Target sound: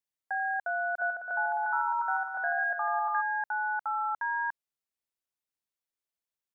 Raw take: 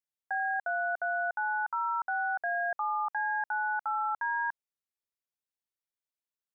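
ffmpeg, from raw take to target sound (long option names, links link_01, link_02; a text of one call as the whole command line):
ffmpeg -i in.wav -filter_complex "[0:a]asplit=3[link_01][link_02][link_03];[link_01]afade=type=out:start_time=0.98:duration=0.02[link_04];[link_02]aecho=1:1:150|262.5|346.9|410.2|457.6:0.631|0.398|0.251|0.158|0.1,afade=type=in:start_time=0.98:duration=0.02,afade=type=out:start_time=3.2:duration=0.02[link_05];[link_03]afade=type=in:start_time=3.2:duration=0.02[link_06];[link_04][link_05][link_06]amix=inputs=3:normalize=0" out.wav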